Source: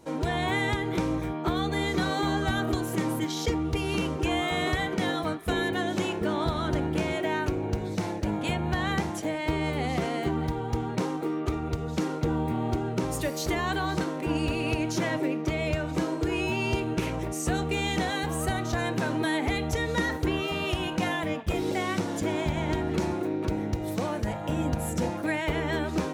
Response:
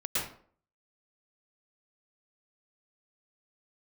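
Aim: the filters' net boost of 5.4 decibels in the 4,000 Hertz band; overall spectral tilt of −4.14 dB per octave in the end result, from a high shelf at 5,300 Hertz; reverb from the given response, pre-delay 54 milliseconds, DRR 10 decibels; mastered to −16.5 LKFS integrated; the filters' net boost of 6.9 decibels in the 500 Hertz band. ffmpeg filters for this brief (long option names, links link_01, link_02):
-filter_complex "[0:a]equalizer=frequency=500:width_type=o:gain=9,equalizer=frequency=4000:width_type=o:gain=9,highshelf=frequency=5300:gain=-6,asplit=2[link_01][link_02];[1:a]atrim=start_sample=2205,adelay=54[link_03];[link_02][link_03]afir=irnorm=-1:irlink=0,volume=-17dB[link_04];[link_01][link_04]amix=inputs=2:normalize=0,volume=8dB"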